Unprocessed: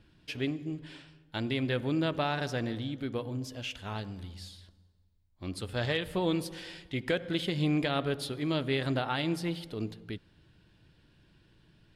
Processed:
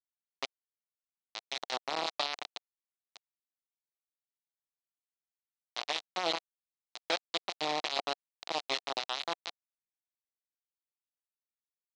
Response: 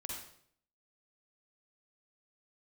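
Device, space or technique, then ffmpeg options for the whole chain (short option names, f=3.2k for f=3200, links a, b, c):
hand-held game console: -af "acrusher=bits=3:mix=0:aa=0.000001,highpass=460,equalizer=f=470:t=q:w=4:g=-3,equalizer=f=730:t=q:w=4:g=5,equalizer=f=1.6k:t=q:w=4:g=-6,equalizer=f=4k:t=q:w=4:g=7,lowpass=f=5.6k:w=0.5412,lowpass=f=5.6k:w=1.3066,volume=-3dB"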